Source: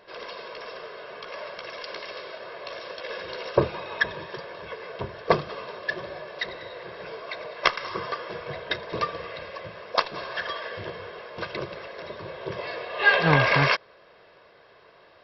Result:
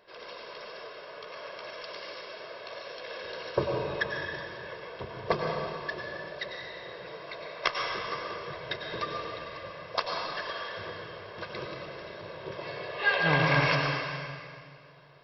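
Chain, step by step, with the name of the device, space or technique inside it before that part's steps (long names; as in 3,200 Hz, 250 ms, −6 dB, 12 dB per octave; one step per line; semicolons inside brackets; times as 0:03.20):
stairwell (convolution reverb RT60 2.2 s, pre-delay 90 ms, DRR 0.5 dB)
high-shelf EQ 5,200 Hz +4 dB
level −7.5 dB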